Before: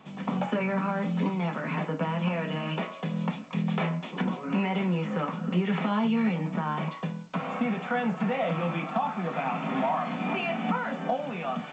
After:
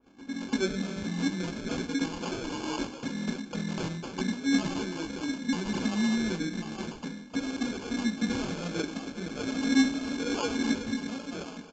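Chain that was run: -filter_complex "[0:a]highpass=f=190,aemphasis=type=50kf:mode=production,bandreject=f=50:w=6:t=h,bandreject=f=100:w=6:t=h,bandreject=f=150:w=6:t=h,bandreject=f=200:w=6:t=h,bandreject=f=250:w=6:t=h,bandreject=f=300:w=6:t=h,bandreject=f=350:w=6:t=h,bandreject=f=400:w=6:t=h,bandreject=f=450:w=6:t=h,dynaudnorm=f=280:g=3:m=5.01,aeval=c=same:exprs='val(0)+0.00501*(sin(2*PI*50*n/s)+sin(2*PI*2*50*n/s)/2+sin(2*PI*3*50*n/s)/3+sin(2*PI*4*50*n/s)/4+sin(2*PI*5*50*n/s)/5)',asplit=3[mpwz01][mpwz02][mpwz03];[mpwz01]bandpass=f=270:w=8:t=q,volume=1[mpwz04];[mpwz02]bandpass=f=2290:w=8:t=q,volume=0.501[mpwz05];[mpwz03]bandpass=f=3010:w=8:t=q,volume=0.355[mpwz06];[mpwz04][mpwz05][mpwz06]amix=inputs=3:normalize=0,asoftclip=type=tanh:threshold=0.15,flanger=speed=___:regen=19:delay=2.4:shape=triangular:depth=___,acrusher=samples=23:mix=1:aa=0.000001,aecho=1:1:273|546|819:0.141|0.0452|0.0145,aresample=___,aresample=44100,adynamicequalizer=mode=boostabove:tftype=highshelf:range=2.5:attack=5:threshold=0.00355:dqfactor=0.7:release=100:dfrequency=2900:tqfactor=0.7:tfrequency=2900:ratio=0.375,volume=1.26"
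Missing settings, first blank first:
0.39, 4, 16000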